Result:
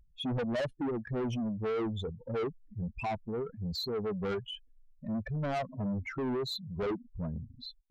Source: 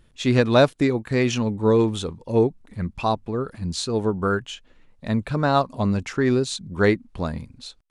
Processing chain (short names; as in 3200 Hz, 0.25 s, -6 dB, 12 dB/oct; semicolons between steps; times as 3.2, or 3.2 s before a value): spectral contrast raised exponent 2.9; soft clip -25 dBFS, distortion -7 dB; gain -5 dB